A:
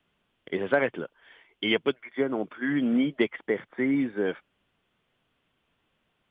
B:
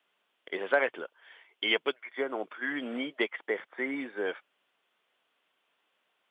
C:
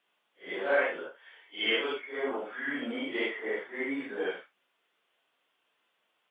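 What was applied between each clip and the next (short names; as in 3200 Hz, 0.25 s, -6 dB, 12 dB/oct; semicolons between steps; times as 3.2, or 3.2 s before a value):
HPF 520 Hz 12 dB/oct
phase scrambler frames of 0.2 s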